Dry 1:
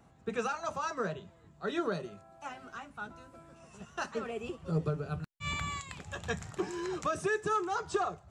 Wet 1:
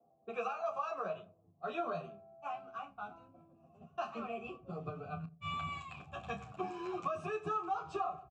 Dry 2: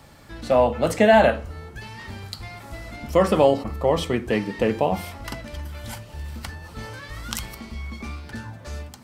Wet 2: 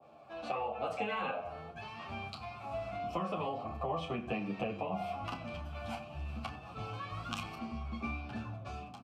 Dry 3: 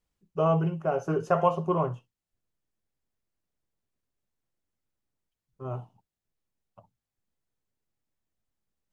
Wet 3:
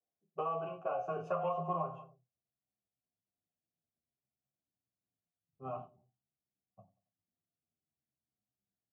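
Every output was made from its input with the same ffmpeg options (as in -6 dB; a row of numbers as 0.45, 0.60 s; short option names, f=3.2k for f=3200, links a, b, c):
-filter_complex "[0:a]asplit=2[a][b];[b]adelay=30,volume=-9.5dB[c];[a][c]amix=inputs=2:normalize=0,asplit=2[d][e];[e]adelay=92,lowpass=f=4.9k:p=1,volume=-18dB,asplit=2[f][g];[g]adelay=92,lowpass=f=4.9k:p=1,volume=0.42,asplit=2[h][i];[i]adelay=92,lowpass=f=4.9k:p=1,volume=0.42[j];[d][f][h][j]amix=inputs=4:normalize=0,acrossover=split=310|600[k][l][m];[m]agate=range=-33dB:threshold=-46dB:ratio=3:detection=peak[n];[k][l][n]amix=inputs=3:normalize=0,asplit=3[o][p][q];[o]bandpass=f=730:t=q:w=8,volume=0dB[r];[p]bandpass=f=1.09k:t=q:w=8,volume=-6dB[s];[q]bandpass=f=2.44k:t=q:w=8,volume=-9dB[t];[r][s][t]amix=inputs=3:normalize=0,acontrast=33,asubboost=boost=11:cutoff=160,afftfilt=real='re*lt(hypot(re,im),0.355)':imag='im*lt(hypot(re,im),0.355)':win_size=1024:overlap=0.75,acompressor=threshold=-38dB:ratio=6,highpass=83,asplit=2[u][v];[v]adelay=9.7,afreqshift=-0.52[w];[u][w]amix=inputs=2:normalize=1,volume=8dB"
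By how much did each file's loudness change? -5.0, -18.5, -11.0 LU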